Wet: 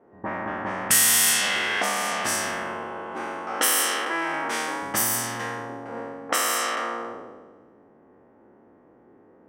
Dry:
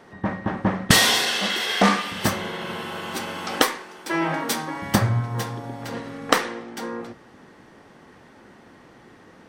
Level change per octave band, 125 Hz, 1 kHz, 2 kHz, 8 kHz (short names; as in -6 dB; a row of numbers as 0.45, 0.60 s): -16.0, -1.5, -0.5, +6.5 dB